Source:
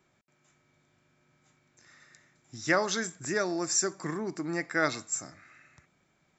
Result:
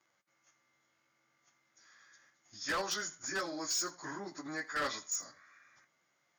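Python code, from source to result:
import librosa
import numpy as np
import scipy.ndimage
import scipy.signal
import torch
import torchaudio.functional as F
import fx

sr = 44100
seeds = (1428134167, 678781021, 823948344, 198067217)

p1 = fx.pitch_bins(x, sr, semitones=-1.5)
p2 = fx.highpass(p1, sr, hz=1100.0, slope=6)
p3 = fx.peak_eq(p2, sr, hz=3100.0, db=-3.0, octaves=0.92)
p4 = fx.level_steps(p3, sr, step_db=12)
p5 = p3 + (p4 * librosa.db_to_amplitude(2.0))
p6 = np.clip(p5, -10.0 ** (-28.0 / 20.0), 10.0 ** (-28.0 / 20.0))
p7 = p6 + fx.echo_single(p6, sr, ms=82, db=-21.5, dry=0)
y = p7 * librosa.db_to_amplitude(-2.5)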